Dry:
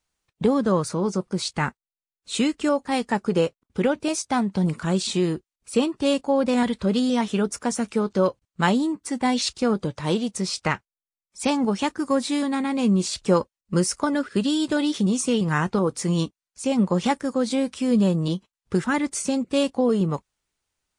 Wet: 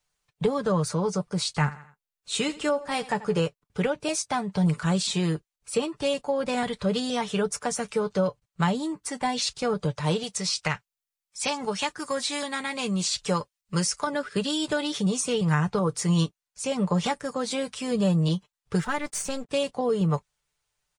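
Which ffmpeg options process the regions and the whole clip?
-filter_complex "[0:a]asettb=1/sr,asplit=3[a][b][c];[a]atrim=end=1.464[d];[b]atrim=start=1.46:end=3.4,asetpts=PTS-STARTPTS,afade=t=in:d=0.004:c=qsin,afade=t=out:st=1.936:d=0.004:c=qsin,asplit=2[e][f];[f]adelay=14,volume=-12dB[g];[e][g]amix=inputs=2:normalize=0,atrim=end_sample=85554,aecho=1:1:84|168|252:0.119|0.0464|0.0181,atrim=end_sample=85554[h];[c]atrim=start=3.396[i];[d][h]acrossfade=d=0.004:c1=hsin:c2=qsin[j];[j][i]acrossfade=d=0.004:c1=qsin:c2=hsin,asettb=1/sr,asplit=3[k][l][m];[k]atrim=end=10.234[n];[l]atrim=start=10.23:end=14.07,asetpts=PTS-STARTPTS,afade=t=in:d=0.004:c=qsin,afade=t=out:st=3.836:d=0.004:c=qsin,acrossover=split=8600[o][p];[p]acompressor=threshold=-50dB:ratio=4:attack=1:release=60[q];[o][q]amix=inputs=2:normalize=0,tiltshelf=f=1.2k:g=-4.5[r];[m]atrim=start=14.066[s];[n][r]acrossfade=d=0.004:c1=hsin:c2=qsin[t];[t][s]acrossfade=d=0.004:c1=qsin:c2=hsin,asettb=1/sr,asplit=3[u][v][w];[u]atrim=end=18.804[x];[v]atrim=start=18.8:end=19.49,asetpts=PTS-STARTPTS,afade=t=in:d=0.004:c=qsin,afade=t=out:st=0.686:d=0.004:c=qsin,aeval=exprs='sgn(val(0))*max(abs(val(0))-0.00188,0)':c=same,acompressor=mode=upward:threshold=-30dB:ratio=2.5:attack=3.2:release=140:knee=2.83:detection=peak,aeval=exprs='(tanh(7.08*val(0)+0.55)-tanh(0.55))/7.08':c=same[y];[w]atrim=start=19.486[z];[x][y]acrossfade=d=0.004:c1=hsin:c2=qsin[aa];[aa][z]acrossfade=d=0.004:c1=qsin:c2=hsin,equalizer=f=280:t=o:w=0.47:g=-13,aecho=1:1:6.8:0.53,acrossover=split=320[ab][ac];[ac]acompressor=threshold=-24dB:ratio=5[ad];[ab][ad]amix=inputs=2:normalize=0"

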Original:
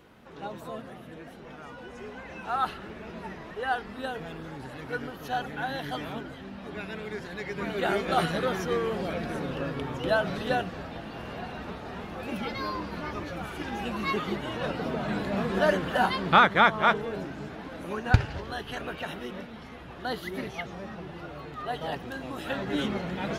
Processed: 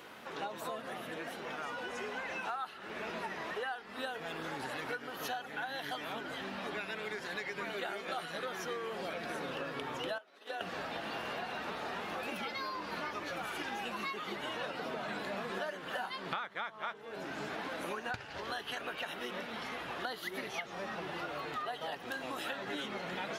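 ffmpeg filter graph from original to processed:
-filter_complex "[0:a]asettb=1/sr,asplit=3[a][b][c];[a]atrim=end=10.184[d];[b]atrim=start=10.18:end=10.61,asetpts=PTS-STARTPTS,afade=t=in:d=0.004:c=qsin,afade=t=out:st=0.426:d=0.004:c=qsin,highpass=f=280:w=0.5412,highpass=f=280:w=1.3066,agate=range=-33dB:threshold=-24dB:ratio=3:release=100:detection=peak,acompressor=threshold=-37dB:ratio=12:attack=3.2:release=140:knee=1:detection=peak[e];[c]atrim=start=10.606[f];[d][e]acrossfade=d=0.004:c1=hsin:c2=qsin[g];[g][f]acrossfade=d=0.004:c1=qsin:c2=hsin,highpass=f=790:p=1,acompressor=threshold=-45dB:ratio=12,volume=9dB"

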